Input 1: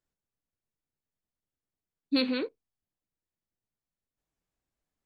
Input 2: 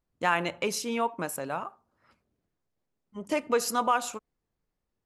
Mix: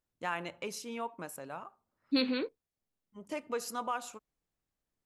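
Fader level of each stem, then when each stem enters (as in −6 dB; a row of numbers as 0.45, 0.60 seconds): −2.5, −10.0 decibels; 0.00, 0.00 seconds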